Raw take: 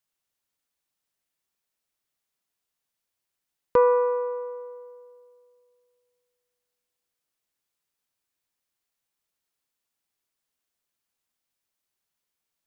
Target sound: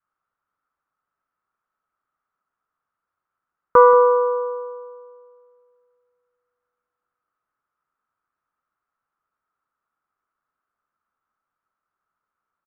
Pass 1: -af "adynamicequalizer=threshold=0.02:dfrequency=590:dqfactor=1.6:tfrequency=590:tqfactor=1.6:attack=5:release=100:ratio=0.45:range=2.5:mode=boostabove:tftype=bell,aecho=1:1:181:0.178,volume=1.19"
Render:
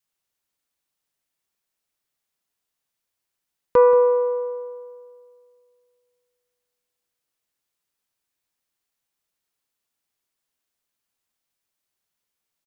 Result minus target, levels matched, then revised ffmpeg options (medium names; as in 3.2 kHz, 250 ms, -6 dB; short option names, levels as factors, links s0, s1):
1 kHz band -5.5 dB
-af "adynamicequalizer=threshold=0.02:dfrequency=590:dqfactor=1.6:tfrequency=590:tqfactor=1.6:attack=5:release=100:ratio=0.45:range=2.5:mode=boostabove:tftype=bell,lowpass=f=1300:t=q:w=7.6,aecho=1:1:181:0.178,volume=1.19"